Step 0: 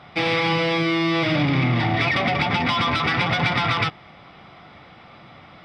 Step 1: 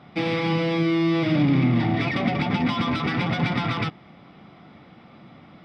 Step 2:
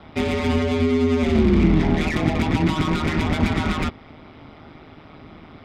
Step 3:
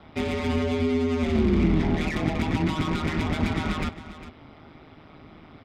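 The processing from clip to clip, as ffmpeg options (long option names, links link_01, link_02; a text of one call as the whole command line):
ffmpeg -i in.wav -af "equalizer=frequency=230:width_type=o:width=1.8:gain=12,volume=-7.5dB" out.wav
ffmpeg -i in.wav -filter_complex "[0:a]aeval=exprs='val(0)*sin(2*PI*78*n/s)':channel_layout=same,acrossover=split=310[link_01][link_02];[link_02]asoftclip=type=tanh:threshold=-30dB[link_03];[link_01][link_03]amix=inputs=2:normalize=0,volume=7.5dB" out.wav
ffmpeg -i in.wav -af "aecho=1:1:404:0.2,volume=-5dB" out.wav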